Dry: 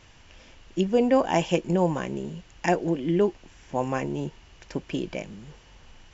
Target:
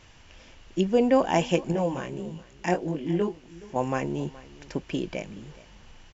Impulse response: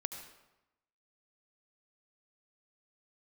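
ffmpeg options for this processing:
-filter_complex "[0:a]asettb=1/sr,asplit=3[a][b][c];[a]atrim=end=1.724[d];[b]atrim=start=1.72:end=3.76,asetpts=PTS-STARTPTS,afade=t=in:d=0.004:c=qsin,afade=t=out:st=2.036:d=0.004:c=qsin,flanger=delay=19:depth=4.8:speed=1.7[e];[c]atrim=start=3.756[f];[d][e]acrossfade=d=0.004:c1=hsin:c2=qsin[g];[g][f]acrossfade=d=0.004:c1=qsin:c2=hsin,aecho=1:1:422:0.1"

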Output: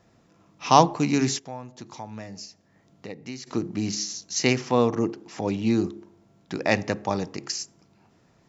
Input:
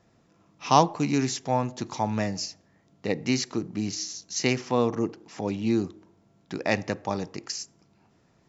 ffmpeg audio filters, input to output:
-filter_complex "[0:a]bandreject=f=69.32:t=h:w=4,bandreject=f=138.64:t=h:w=4,bandreject=f=207.96:t=h:w=4,bandreject=f=277.28:t=h:w=4,bandreject=f=346.6:t=h:w=4,bandreject=f=415.92:t=h:w=4,asplit=3[a][b][c];[a]afade=t=out:st=1.38:d=0.02[d];[b]acompressor=threshold=-49dB:ratio=2,afade=t=in:st=1.38:d=0.02,afade=t=out:st=3.46:d=0.02[e];[c]afade=t=in:st=3.46:d=0.02[f];[d][e][f]amix=inputs=3:normalize=0,volume=3dB"

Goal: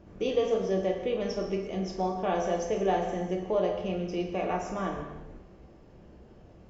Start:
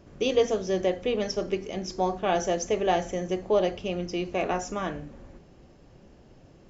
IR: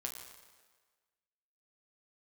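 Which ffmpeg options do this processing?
-filter_complex "[0:a]highshelf=f=3k:g=-10,asplit=2[a][b];[b]acompressor=threshold=-33dB:ratio=6,volume=-1.5dB[c];[a][c]amix=inputs=2:normalize=0[d];[1:a]atrim=start_sample=2205,afade=t=out:st=0.4:d=0.01,atrim=end_sample=18081[e];[d][e]afir=irnorm=-1:irlink=0,volume=-3dB"

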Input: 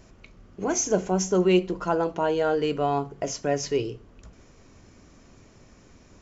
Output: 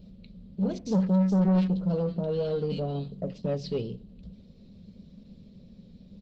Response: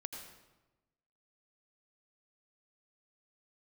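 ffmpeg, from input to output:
-filter_complex "[0:a]firequalizer=gain_entry='entry(130,0);entry(190,15);entry(310,-11);entry(530,1);entry(810,-20);entry(1300,-21);entry(2300,-13);entry(4000,5);entry(6500,-26);entry(10000,-1)':delay=0.05:min_phase=1,asoftclip=type=tanh:threshold=-19.5dB,asettb=1/sr,asplit=3[a][b][c];[a]atrim=end=0.784[d];[b]atrim=start=0.78:end=3.38,asetpts=PTS-STARTPTS,afade=t=in:d=0.004:c=qsin,afade=t=out:st=2.596:d=0.004:c=qsin,acrossover=split=1600[e][f];[f]adelay=80[g];[e][g]amix=inputs=2:normalize=0,atrim=end_sample=114660[h];[c]atrim=start=3.376[i];[d][h]acrossfade=d=0.004:c1=hsin:c2=qsin[j];[j][i]acrossfade=d=0.004:c1=qsin:c2=hsin" -ar 48000 -c:a libopus -b:a 16k

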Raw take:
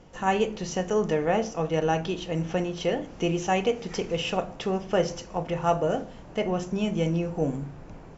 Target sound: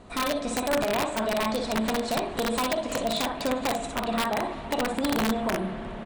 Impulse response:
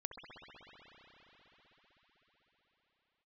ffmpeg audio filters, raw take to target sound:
-filter_complex "[0:a]acompressor=threshold=-27dB:ratio=5,asetrate=59535,aresample=44100,aecho=1:1:45|59:0.158|0.631,aeval=exprs='(mod(11.2*val(0)+1,2)-1)/11.2':c=same,asplit=2[a][b];[1:a]atrim=start_sample=2205,lowpass=5.2k[c];[b][c]afir=irnorm=-1:irlink=0,volume=-4dB[d];[a][d]amix=inputs=2:normalize=0"

